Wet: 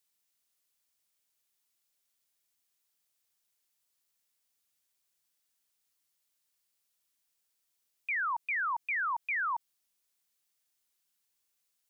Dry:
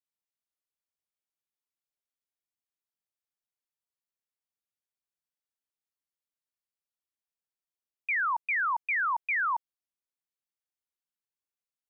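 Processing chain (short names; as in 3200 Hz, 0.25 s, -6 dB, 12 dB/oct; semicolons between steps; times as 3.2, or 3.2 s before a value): high shelf 2500 Hz +10 dB; limiter -34.5 dBFS, peak gain reduction 14.5 dB; gain +6 dB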